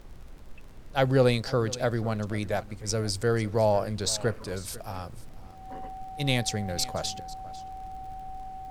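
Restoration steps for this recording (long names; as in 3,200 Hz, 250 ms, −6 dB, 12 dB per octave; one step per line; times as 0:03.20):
click removal
notch filter 760 Hz, Q 30
noise reduction from a noise print 30 dB
echo removal 497 ms −18.5 dB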